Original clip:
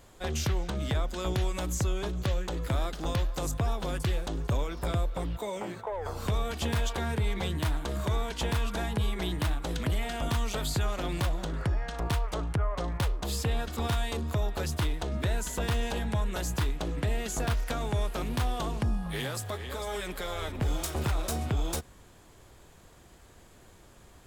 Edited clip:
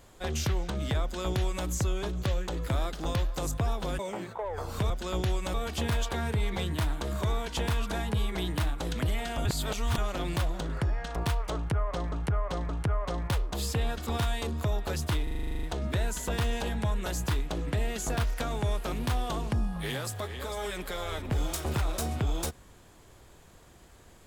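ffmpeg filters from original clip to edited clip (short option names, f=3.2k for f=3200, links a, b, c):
-filter_complex "[0:a]asplit=18[a][b][c][d][e][f][g][h][i][j][k][l][m][n][o][p][q][r];[a]atrim=end=3.992[s];[b]atrim=start=5.468:end=6.382[t];[c]atrim=start=1.018:end=1.662[u];[d]atrim=start=6.378:end=10.292[v];[e]atrim=start=10.288:end=10.822,asetpts=PTS-STARTPTS,areverse[w];[f]atrim=start=10.818:end=12.962[x];[g]atrim=start=12.388:end=12.962[y];[h]atrim=start=12.388:end=14.972[z];[i]atrim=start=14.928:end=14.972[aa];[j]atrim=start=14.928:end=14.972[ab];[k]atrim=start=14.928:end=14.972[ac];[l]atrim=start=14.928:end=14.972[ad];[m]atrim=start=14.928:end=14.972[ae];[n]atrim=start=14.928:end=14.972[af];[o]atrim=start=14.928:end=14.972[ag];[p]atrim=start=14.928:end=14.972[ah];[q]atrim=start=14.928:end=14.972[ai];[r]atrim=start=14.928[aj];[s][t]acrossfade=d=0.004:c1=hsin:c2=hsin[ak];[ak][u]acrossfade=d=0.004:c1=hsin:c2=hsin[al];[al][v]acrossfade=d=0.004:c1=hsin:c2=hsin[am];[am][w]acrossfade=d=0.004:c1=hsin:c2=hsin[an];[an][x]acrossfade=d=0.004:c1=hsin:c2=hsin[ao];[ao][y]acrossfade=d=0.004:c1=hsin:c2=hsin[ap];[ap][z]acrossfade=d=0.004:c1=hsin:c2=hsin[aq];[aq][aa]acrossfade=d=0.004:c1=hsin:c2=hsin[ar];[ar][ab]acrossfade=d=0.004:c1=hsin:c2=hsin[as];[as][ac]acrossfade=d=0.004:c1=hsin:c2=hsin[at];[at][ad]acrossfade=d=0.004:c1=hsin:c2=hsin[au];[au][ae]acrossfade=d=0.004:c1=hsin:c2=hsin[av];[av][af]acrossfade=d=0.004:c1=hsin:c2=hsin[aw];[aw][ag]acrossfade=d=0.004:c1=hsin:c2=hsin[ax];[ax][ah]acrossfade=d=0.004:c1=hsin:c2=hsin[ay];[ay][ai]acrossfade=d=0.004:c1=hsin:c2=hsin[az];[az][aj]acrossfade=d=0.004:c1=hsin:c2=hsin"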